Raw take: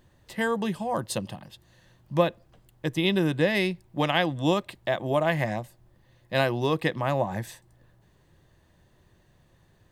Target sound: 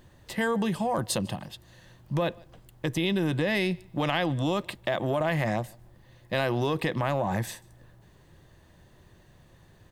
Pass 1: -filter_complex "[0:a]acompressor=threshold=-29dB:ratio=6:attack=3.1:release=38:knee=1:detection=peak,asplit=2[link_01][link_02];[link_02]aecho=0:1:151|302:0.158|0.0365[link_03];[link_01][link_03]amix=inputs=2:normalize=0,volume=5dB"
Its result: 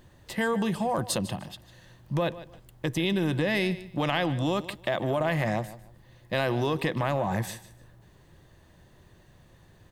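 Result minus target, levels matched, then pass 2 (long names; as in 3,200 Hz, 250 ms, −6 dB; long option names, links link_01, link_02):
echo-to-direct +11 dB
-filter_complex "[0:a]acompressor=threshold=-29dB:ratio=6:attack=3.1:release=38:knee=1:detection=peak,asplit=2[link_01][link_02];[link_02]aecho=0:1:151|302:0.0447|0.0103[link_03];[link_01][link_03]amix=inputs=2:normalize=0,volume=5dB"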